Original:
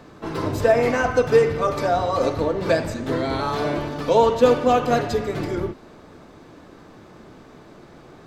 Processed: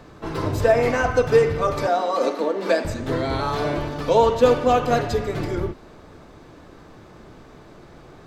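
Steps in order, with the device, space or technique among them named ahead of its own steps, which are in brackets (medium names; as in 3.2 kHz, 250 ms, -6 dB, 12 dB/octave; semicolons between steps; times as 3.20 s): 1.87–2.85 s: steep high-pass 190 Hz 96 dB/octave; low shelf boost with a cut just above (bass shelf 92 Hz +7.5 dB; peaking EQ 230 Hz -3 dB 1 oct)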